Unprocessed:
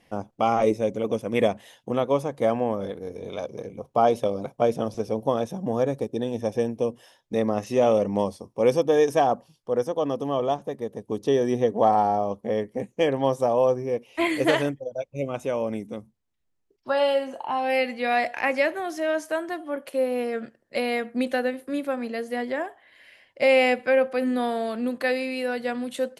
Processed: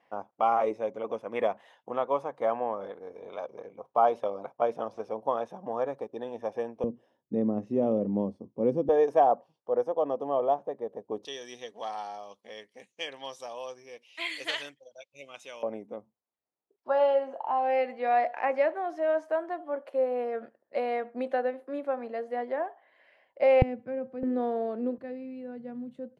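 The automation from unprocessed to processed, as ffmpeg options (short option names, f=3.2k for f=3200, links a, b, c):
-af "asetnsamples=n=441:p=0,asendcmd='6.84 bandpass f 240;8.89 bandpass f 690;11.25 bandpass f 3900;15.63 bandpass f 720;23.62 bandpass f 130;24.23 bandpass f 410;24.98 bandpass f 120',bandpass=f=1k:t=q:w=1.3:csg=0"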